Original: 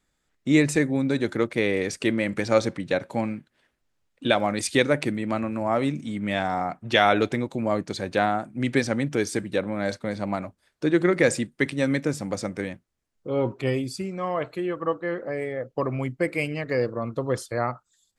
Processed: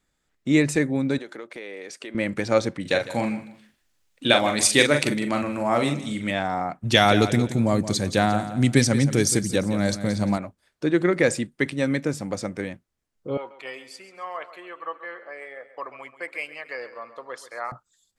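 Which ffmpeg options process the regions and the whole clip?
-filter_complex "[0:a]asettb=1/sr,asplit=3[a][b][c];[a]atrim=end=1.184[d];[b]atrim=start=1.18:end=2.15,asetpts=PTS-STARTPTS,afade=t=in:d=0.004:c=qsin,afade=t=out:st=0.966:d=0.004:c=qsin,highpass=380,highshelf=f=9.8k:g=-5.5,acompressor=threshold=-35dB:ratio=4:attack=3.2:release=140:knee=1:detection=peak[e];[c]atrim=start=2.146[f];[d][e]acrossfade=d=0.004:c1=hsin:c2=qsin[g];[g][f]acrossfade=d=0.004:c1=qsin:c2=hsin,asettb=1/sr,asplit=3[h][i][j];[h]atrim=end=2.814[k];[i]atrim=start=2.81:end=6.31,asetpts=PTS-STARTPTS,afade=t=in:d=0.004:c=qsin,afade=t=out:st=3.496:d=0.004:c=qsin,highshelf=f=2.4k:g=10.5,asplit=2[l][m];[m]adelay=42,volume=-6dB[n];[l][n]amix=inputs=2:normalize=0,atrim=end_sample=154350,aecho=1:1:156|312:0.168|0.0403,atrim=end_sample=154350[o];[j]atrim=start=6.306[p];[k][o]acrossfade=d=0.004:c1=hsin:c2=qsin[q];[q][p]acrossfade=d=0.004:c1=qsin:c2=hsin,asettb=1/sr,asplit=3[r][s][t];[r]atrim=end=6.834[u];[s]atrim=start=6.83:end=10.38,asetpts=PTS-STARTPTS,afade=t=in:d=0.004:c=qsin,afade=t=out:st=3.546:d=0.004:c=qsin,bass=f=250:g=10,treble=f=4k:g=14,aecho=1:1:173|346|519:0.251|0.0728|0.0211,atrim=end_sample=156555[v];[t]atrim=start=10.376[w];[u][v]acrossfade=d=0.004:c1=hsin:c2=qsin[x];[x][w]acrossfade=d=0.004:c1=qsin:c2=hsin,asettb=1/sr,asplit=3[y][z][aa];[y]atrim=end=13.374[ab];[z]atrim=start=13.37:end=17.72,asetpts=PTS-STARTPTS,afade=t=in:d=0.004:c=qsin,afade=t=out:st=4.346:d=0.004:c=qsin,highpass=960,highshelf=f=4.1k:g=-9,aecho=1:1:135|270|405|540:0.2|0.0858|0.0369|0.0159,atrim=end_sample=191835[ac];[aa]atrim=start=17.716[ad];[ab][ac]acrossfade=d=0.004:c1=hsin:c2=qsin[ae];[ae][ad]acrossfade=d=0.004:c1=qsin:c2=hsin"

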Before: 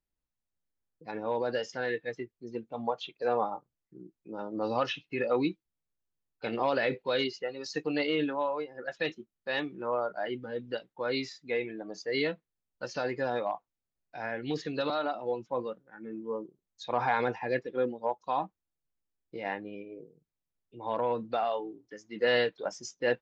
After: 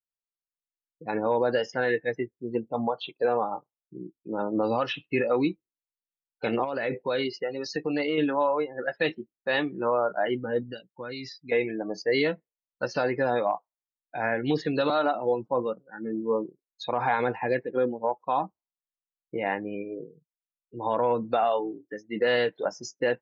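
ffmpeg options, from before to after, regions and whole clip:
-filter_complex "[0:a]asettb=1/sr,asplit=3[a][b][c];[a]atrim=end=6.644[d];[b]atrim=start=6.64:end=8.18,asetpts=PTS-STARTPTS,afade=t=in:d=0.004:c=qsin,afade=t=out:st=1.536:d=0.004:c=qsin,equalizer=f=3.3k:w=2.5:g=-3,acompressor=threshold=-37dB:ratio=2:attack=3.2:release=140:knee=1:detection=peak[e];[c]atrim=start=8.176[f];[d][e]acrossfade=d=0.004:c1=hsin:c2=qsin[g];[g][f]acrossfade=d=0.004:c1=qsin:c2=hsin,asettb=1/sr,asplit=3[h][i][j];[h]atrim=end=10.634[k];[i]atrim=start=10.63:end=11.52,asetpts=PTS-STARTPTS,afade=t=in:d=0.004:c=qsin,afade=t=out:st=0.886:d=0.004:c=qsin,equalizer=f=700:w=0.54:g=-12,acompressor=threshold=-40dB:ratio=12:attack=3.2:release=140:knee=1:detection=peak[l];[j]atrim=start=11.516[m];[k][l]acrossfade=d=0.004:c1=hsin:c2=qsin[n];[n][m]acrossfade=d=0.004:c1=qsin:c2=hsin,lowpass=f=4k:p=1,afftdn=nr=34:nf=-54,alimiter=limit=-24dB:level=0:latency=1:release=319,volume=9dB"

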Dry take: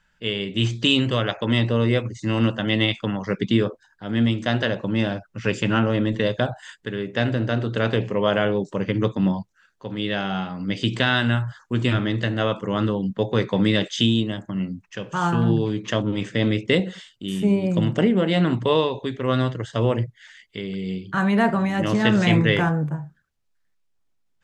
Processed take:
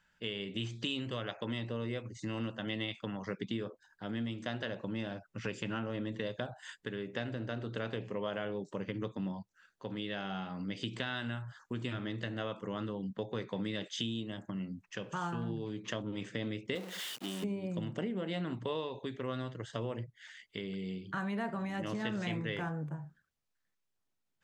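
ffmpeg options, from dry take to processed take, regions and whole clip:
-filter_complex "[0:a]asettb=1/sr,asplit=3[a][b][c];[a]atrim=end=16.754[d];[b]atrim=start=16.75:end=17.44,asetpts=PTS-STARTPTS,afade=t=in:d=0.004:c=qsin,afade=t=out:st=0.686:d=0.004:c=qsin,aeval=exprs='val(0)+0.5*0.0473*sgn(val(0))':c=same,highpass=260,agate=range=-33dB:threshold=-30dB:ratio=3:release=100:detection=peak[e];[c]atrim=start=17.436[f];[d][e]acrossfade=d=0.004:c1=hsin:c2=qsin[g];[g][f]acrossfade=d=0.004:c1=qsin:c2=hsin,acompressor=threshold=-31dB:ratio=3,lowshelf=f=65:g=-10,volume=-5.5dB"

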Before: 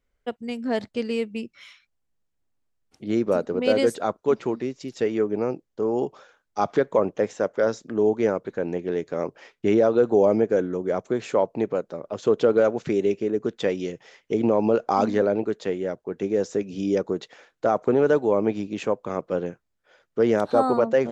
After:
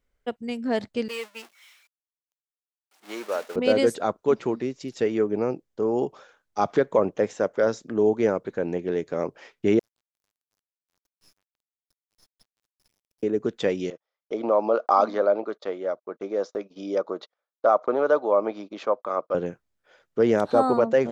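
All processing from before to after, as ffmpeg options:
-filter_complex "[0:a]asettb=1/sr,asplit=3[a][b][c];[a]atrim=end=1.084[d];[b]atrim=start=1.08:end=3.56,asetpts=PTS-STARTPTS,afade=t=in:d=0.004:c=qsin,afade=t=out:st=2.476:d=0.004:c=qsin,aeval=exprs='val(0)+0.5*0.0251*sgn(val(0))':c=same,agate=range=-33dB:threshold=-26dB:ratio=3:release=100:detection=peak,highpass=760[e];[c]atrim=start=3.556[f];[d][e]acrossfade=d=0.004:c1=hsin:c2=qsin[g];[g][f]acrossfade=d=0.004:c1=qsin:c2=hsin,asettb=1/sr,asplit=3[h][i][j];[h]atrim=end=9.794[k];[i]atrim=start=9.79:end=13.23,asetpts=PTS-STARTPTS,afade=t=in:d=0.004:c=qsin,afade=t=out:st=3.436:d=0.004:c=qsin,acompressor=threshold=-35dB:ratio=3:attack=3.2:release=140:knee=1:detection=peak,bandpass=f=5.2k:t=q:w=14,acrusher=bits=8:dc=4:mix=0:aa=0.000001[l];[j]atrim=start=13.226[m];[k][l]acrossfade=d=0.004:c1=hsin:c2=qsin[n];[n][m]acrossfade=d=0.004:c1=qsin:c2=hsin,asettb=1/sr,asplit=3[o][p][q];[o]atrim=end=13.904[r];[p]atrim=start=13.9:end=19.35,asetpts=PTS-STARTPTS,afade=t=in:d=0.004:c=qsin,afade=t=out:st=5.446:d=0.004:c=qsin,highpass=420,equalizer=f=420:t=q:w=4:g=-4,equalizer=f=600:t=q:w=4:g=6,equalizer=f=1.2k:t=q:w=4:g=9,equalizer=f=1.8k:t=q:w=4:g=-6,equalizer=f=2.7k:t=q:w=4:g=-9,lowpass=f=5.1k:w=0.5412,lowpass=f=5.1k:w=1.3066,agate=range=-34dB:threshold=-45dB:ratio=16:release=100:detection=peak[s];[q]atrim=start=19.346[t];[r][s]acrossfade=d=0.004:c1=hsin:c2=qsin[u];[u][t]acrossfade=d=0.004:c1=qsin:c2=hsin"

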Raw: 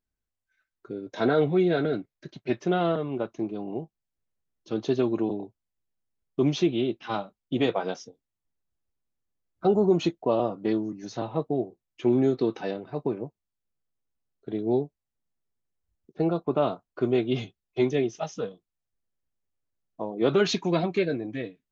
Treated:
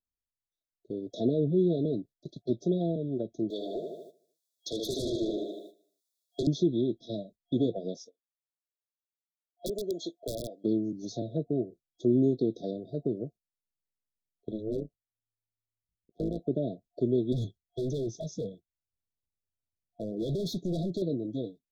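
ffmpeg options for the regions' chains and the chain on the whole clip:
-filter_complex "[0:a]asettb=1/sr,asplit=3[a][b][c];[a]atrim=end=3.504[d];[b]atrim=start=3.5:end=6.47,asetpts=PTS-STARTPTS,afade=t=in:d=0.004:c=qsin,afade=t=out:st=2.966:d=0.004:c=qsin,highpass=1.2k,aecho=1:1:76|152|228|304|380|456|532:0.562|0.298|0.158|0.0837|0.0444|0.0235|0.0125,atrim=end_sample=130977,aeval=exprs='0.0891*sin(PI/2*7.08*val(0)/0.0891)':c=same[e];[c]atrim=start=6.466[f];[d][e]acrossfade=d=0.004:c1=hsin:c2=qsin[g];[g][f]acrossfade=d=0.004:c1=qsin:c2=hsin,asettb=1/sr,asplit=3[h][i][j];[h]atrim=end=7.974[k];[i]atrim=start=7.97:end=10.64,asetpts=PTS-STARTPTS,afade=t=in:d=0.004:c=qsin,afade=t=out:st=2.666:d=0.004:c=qsin,highpass=600,aeval=exprs='(mod(10*val(0)+1,2)-1)/10':c=same[l];[j]atrim=start=10.636[m];[k][l]acrossfade=d=0.004:c1=hsin:c2=qsin[n];[n][m]acrossfade=d=0.004:c1=qsin:c2=hsin,asettb=1/sr,asplit=3[o][p][q];[o]atrim=end=14.514[r];[p]atrim=start=14.51:end=16.4,asetpts=PTS-STARTPTS,afade=t=in:d=0.004:c=qsin,afade=t=out:st=1.886:d=0.004:c=qsin,tremolo=f=110:d=0.889,aeval=exprs='0.0794*(abs(mod(val(0)/0.0794+3,4)-2)-1)':c=same[s];[q]atrim=start=16.396[t];[r][s]acrossfade=d=0.004:c1=hsin:c2=qsin[u];[u][t]acrossfade=d=0.004:c1=qsin:c2=hsin,asettb=1/sr,asplit=3[v][w][x];[v]atrim=end=17.324[y];[w]atrim=start=17.32:end=21.02,asetpts=PTS-STARTPTS,afade=t=in:d=0.004:c=qsin,afade=t=out:st=3.696:d=0.004:c=qsin,equalizer=f=83:w=0.83:g=9.5,volume=27.5dB,asoftclip=hard,volume=-27.5dB[z];[x]atrim=start=21.016[aa];[y][z]acrossfade=d=0.004:c1=hsin:c2=qsin[ab];[ab][aa]acrossfade=d=0.004:c1=qsin:c2=hsin,agate=range=-11dB:threshold=-46dB:ratio=16:detection=peak,afftfilt=real='re*(1-between(b*sr/4096,710,3300))':imag='im*(1-between(b*sr/4096,710,3300))':win_size=4096:overlap=0.75,acrossover=split=390[ac][ad];[ad]acompressor=threshold=-38dB:ratio=6[ae];[ac][ae]amix=inputs=2:normalize=0"

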